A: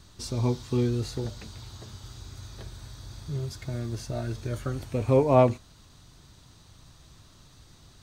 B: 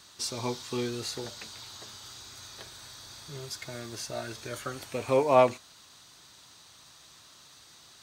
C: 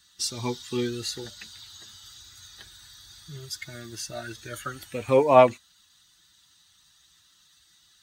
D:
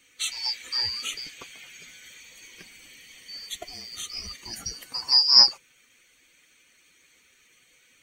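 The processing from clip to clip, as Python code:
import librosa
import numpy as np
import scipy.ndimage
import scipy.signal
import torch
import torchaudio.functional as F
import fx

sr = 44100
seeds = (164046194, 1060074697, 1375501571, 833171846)

y1 = fx.highpass(x, sr, hz=1100.0, slope=6)
y1 = y1 * librosa.db_to_amplitude(5.5)
y2 = fx.bin_expand(y1, sr, power=1.5)
y2 = y2 * librosa.db_to_amplitude(6.0)
y3 = fx.band_shuffle(y2, sr, order='2341')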